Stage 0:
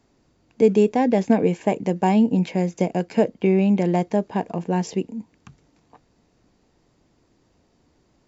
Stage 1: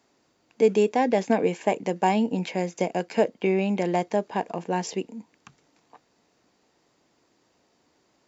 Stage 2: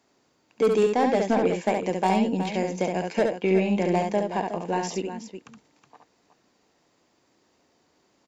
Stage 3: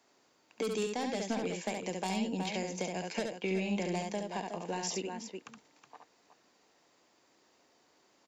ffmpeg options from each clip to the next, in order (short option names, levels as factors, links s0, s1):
-af "highpass=f=560:p=1,volume=1.19"
-filter_complex "[0:a]aeval=exprs='0.376*(cos(1*acos(clip(val(0)/0.376,-1,1)))-cos(1*PI/2))+0.0668*(cos(5*acos(clip(val(0)/0.376,-1,1)))-cos(5*PI/2))+0.0335*(cos(7*acos(clip(val(0)/0.376,-1,1)))-cos(7*PI/2))+0.00266*(cos(8*acos(clip(val(0)/0.376,-1,1)))-cos(8*PI/2))':c=same,asplit=2[s0][s1];[s1]aecho=0:1:69|369:0.596|0.299[s2];[s0][s2]amix=inputs=2:normalize=0,volume=0.708"
-filter_complex "[0:a]lowshelf=f=250:g=-11.5,acrossover=split=220|3000[s0][s1][s2];[s1]acompressor=threshold=0.0158:ratio=6[s3];[s0][s3][s2]amix=inputs=3:normalize=0"